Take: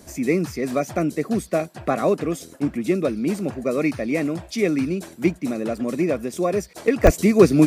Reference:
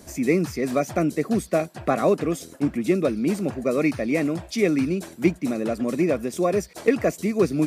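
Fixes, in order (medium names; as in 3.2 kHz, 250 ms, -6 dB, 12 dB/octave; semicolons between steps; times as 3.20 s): 7.04–7.16 s: high-pass 140 Hz 24 dB/octave; interpolate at 1.50/5.77/7.07 s, 1.4 ms; trim 0 dB, from 7.03 s -7.5 dB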